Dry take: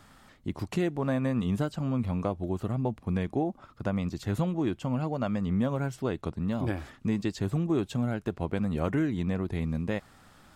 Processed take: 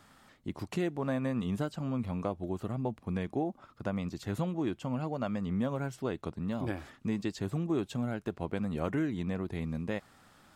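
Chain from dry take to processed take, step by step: bass shelf 83 Hz -9 dB; trim -3 dB

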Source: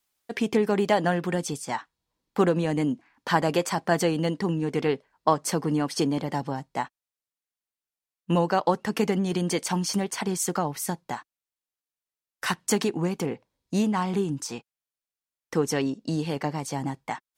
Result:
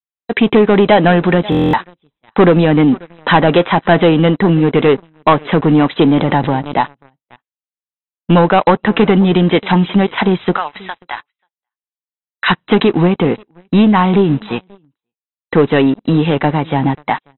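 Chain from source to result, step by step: 10.57–12.48 s: high-pass 1.3 kHz 12 dB/octave; delay 536 ms -23.5 dB; waveshaping leveller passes 3; gate with hold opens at -48 dBFS; brick-wall FIR low-pass 4 kHz; buffer glitch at 1.50 s, samples 1024, times 9; 6.14–6.77 s: swell ahead of each attack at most 74 dB/s; trim +5 dB

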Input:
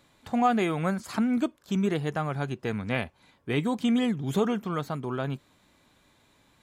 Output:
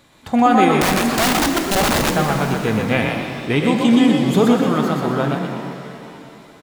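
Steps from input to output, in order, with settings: frequency-shifting echo 124 ms, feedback 36%, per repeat +40 Hz, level -4 dB; 0.81–2.16 s: integer overflow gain 22 dB; pitch-shifted reverb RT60 2.8 s, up +7 st, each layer -8 dB, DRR 5.5 dB; trim +9 dB

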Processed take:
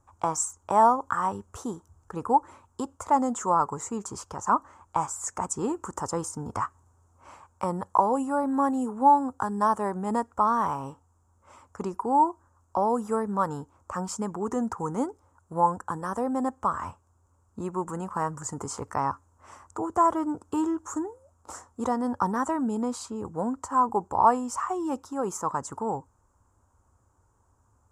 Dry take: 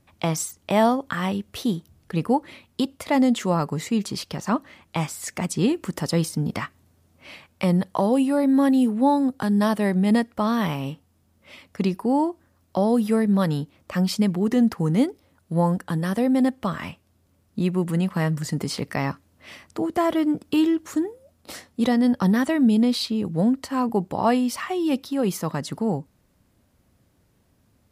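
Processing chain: FFT filter 100 Hz 0 dB, 160 Hz -15 dB, 430 Hz -4 dB, 640 Hz -6 dB, 930 Hz +8 dB, 1.4 kHz +2 dB, 2 kHz -17 dB, 4.2 kHz -22 dB, 7.2 kHz +5 dB, 12 kHz -17 dB

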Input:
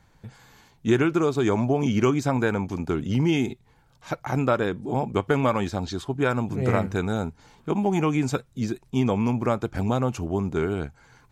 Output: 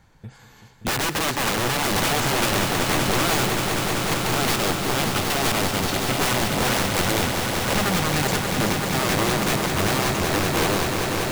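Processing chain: 7.81–8.23 s: static phaser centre 2 kHz, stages 8; integer overflow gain 21 dB; echo with a slow build-up 192 ms, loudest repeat 5, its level -8 dB; trim +2.5 dB

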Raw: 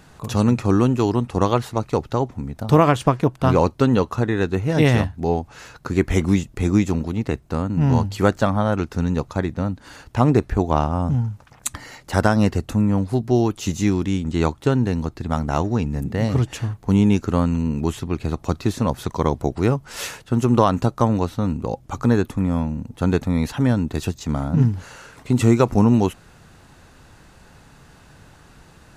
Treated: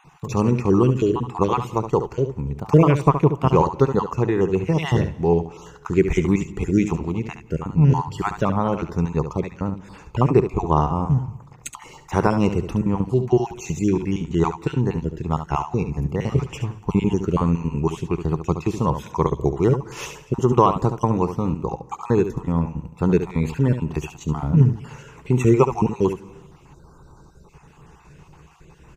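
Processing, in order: random holes in the spectrogram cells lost 30%; rippled EQ curve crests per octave 0.74, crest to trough 9 dB; delay 71 ms -9.5 dB; on a send at -22 dB: reverberation RT60 0.85 s, pre-delay 162 ms; on the sum: time-frequency box 26.73–27.49 s, 1.6–3.6 kHz -25 dB; treble shelf 2.9 kHz -8 dB

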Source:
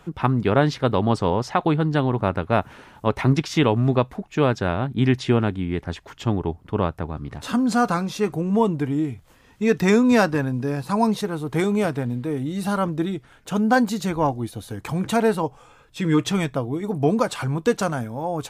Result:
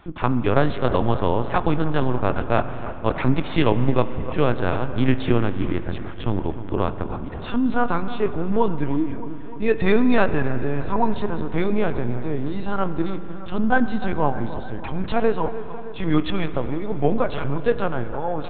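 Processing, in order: on a send: bucket-brigade echo 306 ms, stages 4096, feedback 62%, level -13.5 dB; on the sum: LPC vocoder at 8 kHz pitch kept; spring tank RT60 3.2 s, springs 42 ms, chirp 65 ms, DRR 12 dB

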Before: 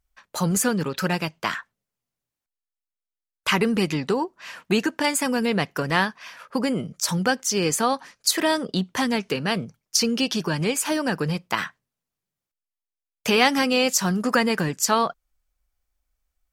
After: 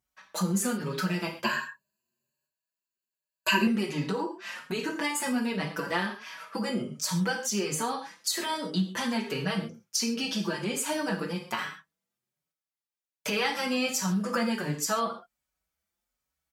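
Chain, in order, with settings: high-pass 110 Hz 12 dB/octave; reverberation, pre-delay 3 ms, DRR 1 dB; compression 2:1, threshold -28 dBFS, peak gain reduction 9.5 dB; 1.44–3.67 s: rippled EQ curve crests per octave 1.4, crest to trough 18 dB; endless flanger 5.1 ms +1.3 Hz

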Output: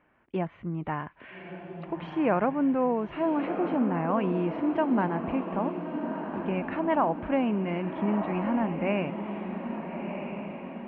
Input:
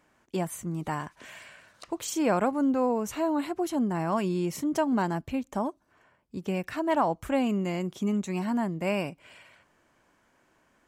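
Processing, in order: steep low-pass 2.8 kHz 36 dB/octave; on a send: echo that smears into a reverb 1306 ms, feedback 52%, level -7 dB

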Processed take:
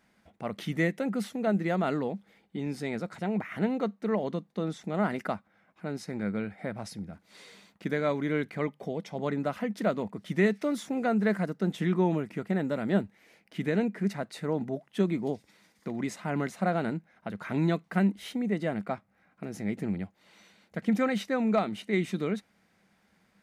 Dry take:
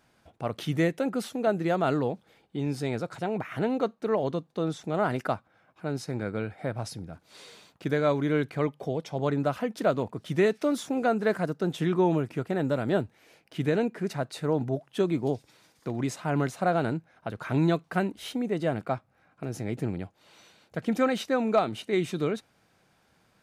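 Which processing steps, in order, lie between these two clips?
graphic EQ with 31 bands 125 Hz -8 dB, 200 Hz +12 dB, 2 kHz +8 dB; trim -4 dB

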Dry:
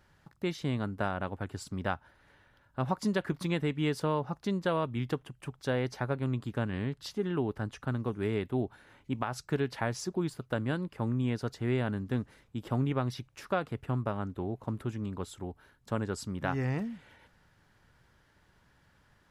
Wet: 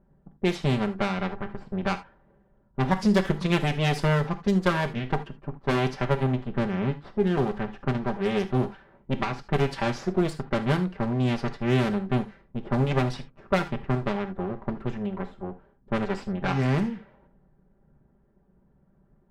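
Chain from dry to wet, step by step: comb filter that takes the minimum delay 5.1 ms; level-controlled noise filter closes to 440 Hz, open at -28 dBFS; 6.23–7.27 s: treble shelf 3.3 kHz -8 dB; gated-style reverb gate 100 ms flat, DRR 10 dB; trim +8 dB

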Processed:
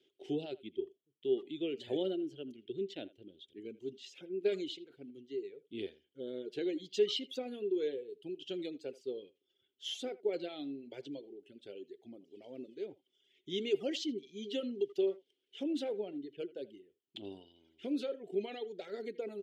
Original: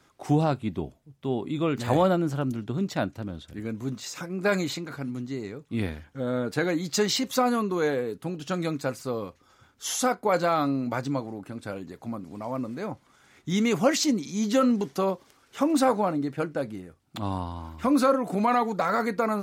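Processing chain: reverb removal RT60 1.7 s; two resonant band-passes 1.1 kHz, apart 3 oct; speakerphone echo 80 ms, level -19 dB; trim +1 dB

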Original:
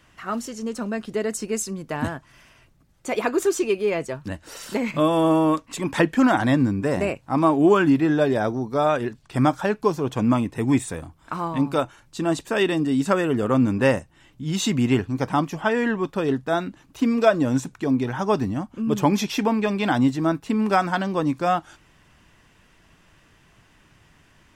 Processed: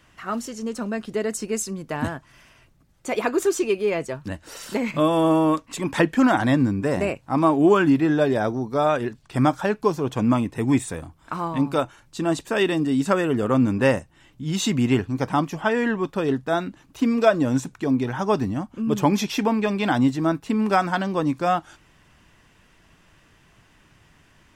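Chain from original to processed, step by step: 12.48–12.93 s: crackle 120 per s -> 280 per s -47 dBFS

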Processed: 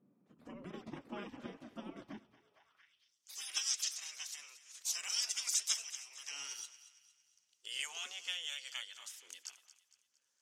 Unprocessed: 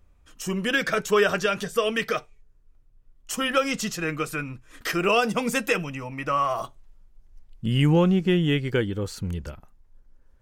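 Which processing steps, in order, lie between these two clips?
spectral gate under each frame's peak -20 dB weak; thinning echo 229 ms, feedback 45%, high-pass 850 Hz, level -14.5 dB; band-pass sweep 220 Hz -> 6.3 kHz, 2.32–3.15 s; trim +8.5 dB

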